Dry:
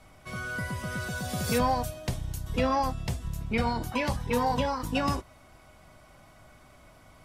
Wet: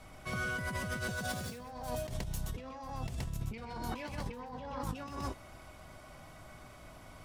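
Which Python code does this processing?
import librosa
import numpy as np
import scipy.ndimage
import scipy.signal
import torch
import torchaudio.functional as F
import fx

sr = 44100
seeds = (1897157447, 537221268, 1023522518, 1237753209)

y = fx.self_delay(x, sr, depth_ms=0.085)
y = fx.peak_eq(y, sr, hz=12000.0, db=fx.line((4.19, -3.0), (4.8, -14.5)), octaves=2.3, at=(4.19, 4.8), fade=0.02)
y = y + 10.0 ** (-7.0 / 20.0) * np.pad(y, (int(124 * sr / 1000.0), 0))[:len(y)]
y = fx.over_compress(y, sr, threshold_db=-36.0, ratio=-1.0)
y = F.gain(torch.from_numpy(y), -4.0).numpy()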